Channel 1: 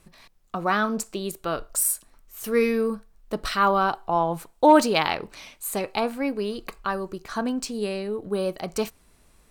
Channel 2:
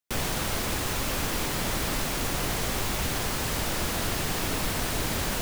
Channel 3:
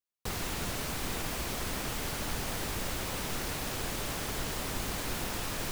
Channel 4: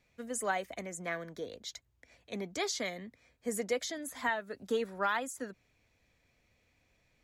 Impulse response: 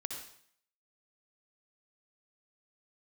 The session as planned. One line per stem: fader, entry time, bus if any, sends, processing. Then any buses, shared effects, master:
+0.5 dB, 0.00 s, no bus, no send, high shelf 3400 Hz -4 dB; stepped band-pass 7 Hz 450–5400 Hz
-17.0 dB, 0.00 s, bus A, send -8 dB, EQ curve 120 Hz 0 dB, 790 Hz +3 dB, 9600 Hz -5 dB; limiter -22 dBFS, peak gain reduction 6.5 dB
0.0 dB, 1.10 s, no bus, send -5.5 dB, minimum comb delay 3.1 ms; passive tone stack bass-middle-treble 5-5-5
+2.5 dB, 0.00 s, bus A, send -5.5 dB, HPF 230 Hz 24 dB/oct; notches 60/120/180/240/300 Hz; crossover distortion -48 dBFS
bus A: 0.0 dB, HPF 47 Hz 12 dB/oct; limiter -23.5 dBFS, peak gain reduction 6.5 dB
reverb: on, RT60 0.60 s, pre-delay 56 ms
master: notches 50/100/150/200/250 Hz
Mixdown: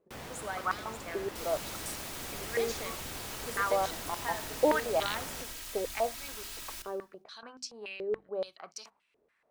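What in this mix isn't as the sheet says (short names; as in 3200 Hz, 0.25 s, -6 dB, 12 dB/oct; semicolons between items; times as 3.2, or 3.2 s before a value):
stem 2: missing limiter -22 dBFS, peak gain reduction 6.5 dB; stem 4 +2.5 dB -> -8.0 dB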